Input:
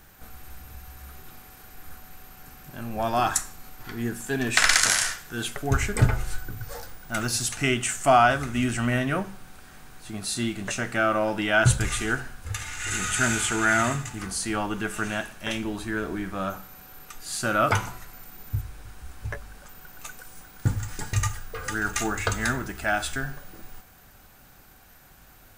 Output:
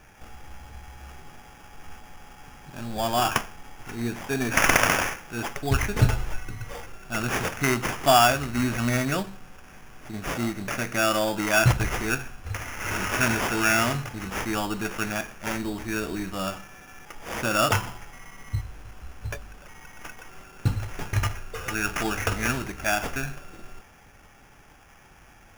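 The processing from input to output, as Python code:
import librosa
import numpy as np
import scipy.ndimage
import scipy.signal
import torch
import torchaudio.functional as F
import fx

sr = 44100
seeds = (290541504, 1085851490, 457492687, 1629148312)

y = fx.sample_hold(x, sr, seeds[0], rate_hz=4100.0, jitter_pct=0)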